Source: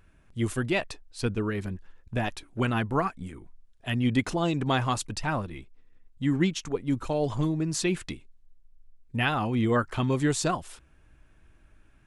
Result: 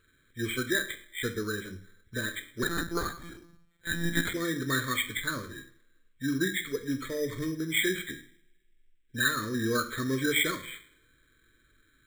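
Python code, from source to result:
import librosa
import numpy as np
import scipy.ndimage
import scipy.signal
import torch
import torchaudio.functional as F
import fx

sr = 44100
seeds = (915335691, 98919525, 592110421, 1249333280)

y = fx.freq_compress(x, sr, knee_hz=1500.0, ratio=4.0)
y = scipy.signal.sosfilt(scipy.signal.cheby1(2, 1.0, [470.0, 1300.0], 'bandstop', fs=sr, output='sos'), y)
y = fx.low_shelf(y, sr, hz=220.0, db=-11.5)
y = fx.hum_notches(y, sr, base_hz=50, count=4)
y = fx.rev_double_slope(y, sr, seeds[0], early_s=0.53, late_s=1.6, knee_db=-25, drr_db=7.0)
y = fx.lpc_monotone(y, sr, seeds[1], pitch_hz=170.0, order=10, at=(2.63, 4.34))
y = np.repeat(scipy.signal.resample_poly(y, 1, 8), 8)[:len(y)]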